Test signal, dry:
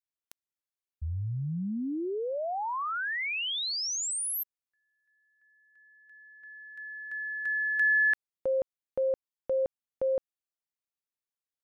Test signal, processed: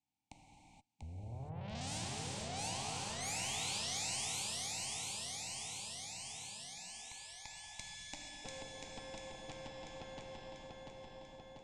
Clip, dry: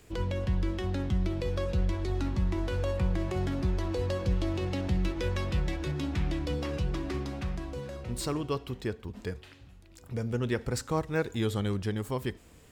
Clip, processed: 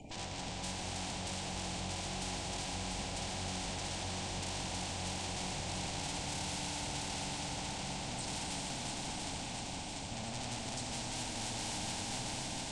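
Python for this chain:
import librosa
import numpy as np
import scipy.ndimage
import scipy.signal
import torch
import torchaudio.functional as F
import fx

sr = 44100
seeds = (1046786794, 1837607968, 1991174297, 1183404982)

p1 = fx.spec_quant(x, sr, step_db=30)
p2 = fx.vowel_filter(p1, sr, vowel='u')
p3 = fx.low_shelf(p2, sr, hz=470.0, db=11.5)
p4 = fx.tube_stage(p3, sr, drive_db=52.0, bias=0.45)
p5 = fx.curve_eq(p4, sr, hz=(130.0, 230.0, 350.0, 780.0, 1200.0, 1700.0, 2800.0, 4400.0, 8500.0, 13000.0), db=(0, -10, -26, -1, -27, -22, -7, -2, 5, -26))
p6 = p5 + fx.echo_feedback(p5, sr, ms=691, feedback_pct=55, wet_db=-4.5, dry=0)
p7 = fx.rev_gated(p6, sr, seeds[0], gate_ms=500, shape='flat', drr_db=-1.5)
p8 = fx.spectral_comp(p7, sr, ratio=2.0)
y = F.gain(torch.from_numpy(p8), 17.0).numpy()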